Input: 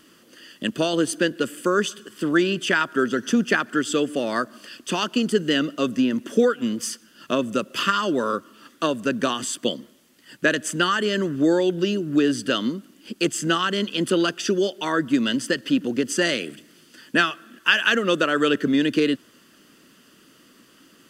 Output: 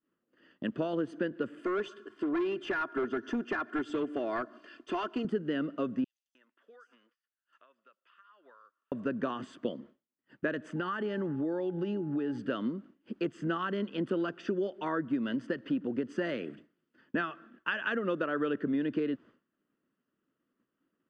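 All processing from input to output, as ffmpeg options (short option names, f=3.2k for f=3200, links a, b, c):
-filter_complex "[0:a]asettb=1/sr,asplit=3[a][b][c];[a]atrim=end=1.594[d];[b]atrim=start=1.59:end=5.25,asetpts=PTS-STARTPTS,afade=t=in:d=0.004:c=qsin,afade=t=out:st=3.656:d=0.004:c=qsin,bass=f=250:g=-8,treble=f=4k:g=3,aecho=1:1:2.9:0.64,atrim=end_sample=161406,asoftclip=type=hard:threshold=-18.5dB[e];[c]atrim=start=5.246[f];[d][e]acrossfade=d=0.004:c1=hsin:c2=qsin[g];[g][f]acrossfade=d=0.004:c1=qsin:c2=hsin,asettb=1/sr,asplit=3[h][i][j];[h]atrim=end=6.044[k];[i]atrim=start=6.04:end=8.92,asetpts=PTS-STARTPTS,afade=t=in:d=0.004:c=qsin,afade=t=out:st=2.876:d=0.004:c=qsin,highpass=1.2k,acompressor=threshold=-41dB:ratio=20:attack=3.2:release=140:knee=1:detection=peak,acrossover=split=5000[l][m];[l]adelay=310[n];[n][m]amix=inputs=2:normalize=0,atrim=end_sample=127008[o];[j]atrim=start=8.916[p];[k][o]acrossfade=d=0.004:c1=hsin:c2=qsin[q];[q][p]acrossfade=d=0.004:c1=qsin:c2=hsin,asettb=1/sr,asplit=3[r][s][t];[r]atrim=end=10.764[u];[s]atrim=start=10.76:end=12.38,asetpts=PTS-STARTPTS,afade=t=in:d=0.004:c=qsin,afade=t=out:st=1.616:d=0.004:c=qsin,acompressor=threshold=-23dB:ratio=2.5:attack=3.2:release=140:knee=1:detection=peak,aeval=exprs='val(0)+0.00355*sin(2*PI*840*n/s)':c=same[v];[t]atrim=start=12.376[w];[u][v]acrossfade=d=0.004:c1=hsin:c2=qsin[x];[x][w]acrossfade=d=0.004:c1=qsin:c2=hsin,agate=range=-33dB:threshold=-40dB:ratio=3:detection=peak,lowpass=1.5k,acompressor=threshold=-24dB:ratio=2.5,volume=-5.5dB"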